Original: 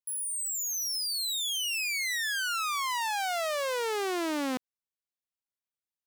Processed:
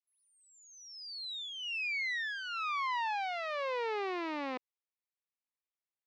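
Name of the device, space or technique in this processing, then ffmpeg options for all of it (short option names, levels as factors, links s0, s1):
phone earpiece: -af "highpass=460,equalizer=f=650:t=q:w=4:g=-8,equalizer=f=1500:t=q:w=4:g=-10,equalizer=f=3200:t=q:w=4:g=-9,lowpass=f=3500:w=0.5412,lowpass=f=3500:w=1.3066"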